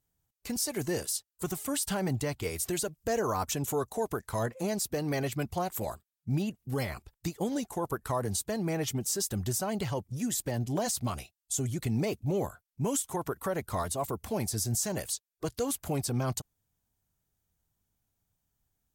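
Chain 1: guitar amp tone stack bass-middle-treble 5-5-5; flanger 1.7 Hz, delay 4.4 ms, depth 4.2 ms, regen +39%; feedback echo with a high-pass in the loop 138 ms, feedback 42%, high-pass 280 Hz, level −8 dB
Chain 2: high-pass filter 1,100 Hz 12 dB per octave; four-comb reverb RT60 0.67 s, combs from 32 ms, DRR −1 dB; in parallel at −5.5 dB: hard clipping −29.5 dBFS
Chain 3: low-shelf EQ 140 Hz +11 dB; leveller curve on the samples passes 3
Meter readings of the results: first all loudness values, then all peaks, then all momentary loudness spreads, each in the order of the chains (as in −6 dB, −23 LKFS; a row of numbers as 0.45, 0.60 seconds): −46.0, −30.0, −23.0 LKFS; −28.0, −15.5, −16.0 dBFS; 11, 11, 5 LU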